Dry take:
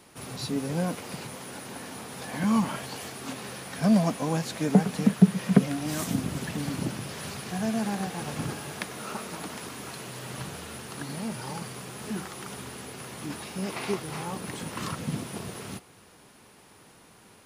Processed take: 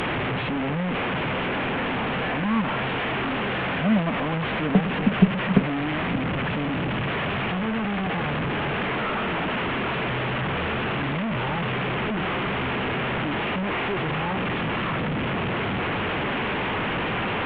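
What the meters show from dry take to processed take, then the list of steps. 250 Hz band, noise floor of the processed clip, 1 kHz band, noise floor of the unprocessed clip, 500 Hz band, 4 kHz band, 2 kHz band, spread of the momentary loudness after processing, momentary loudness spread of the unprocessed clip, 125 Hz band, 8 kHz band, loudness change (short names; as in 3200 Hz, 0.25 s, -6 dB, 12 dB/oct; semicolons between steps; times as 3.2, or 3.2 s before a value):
+2.5 dB, -26 dBFS, +10.0 dB, -55 dBFS, +7.0 dB, +8.0 dB, +14.0 dB, 4 LU, 15 LU, +4.0 dB, under -30 dB, +5.0 dB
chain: delta modulation 16 kbps, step -19.5 dBFS; added harmonics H 2 -21 dB, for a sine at -4 dBFS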